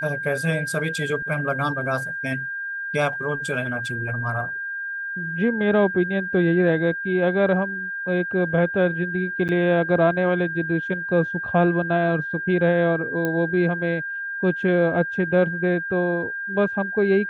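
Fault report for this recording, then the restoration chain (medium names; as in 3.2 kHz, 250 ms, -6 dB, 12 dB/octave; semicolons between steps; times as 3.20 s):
whine 1.6 kHz -27 dBFS
9.48–9.49 s: dropout 8.8 ms
13.25 s: pop -12 dBFS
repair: de-click; band-stop 1.6 kHz, Q 30; interpolate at 9.48 s, 8.8 ms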